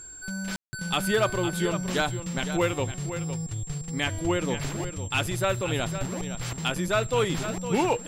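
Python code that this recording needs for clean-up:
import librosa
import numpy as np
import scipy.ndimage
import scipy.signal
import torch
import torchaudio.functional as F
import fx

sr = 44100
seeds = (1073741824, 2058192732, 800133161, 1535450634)

y = fx.fix_declip(x, sr, threshold_db=-15.5)
y = fx.notch(y, sr, hz=7500.0, q=30.0)
y = fx.fix_ambience(y, sr, seeds[0], print_start_s=3.43, print_end_s=3.93, start_s=0.56, end_s=0.73)
y = fx.fix_echo_inverse(y, sr, delay_ms=509, level_db=-10.5)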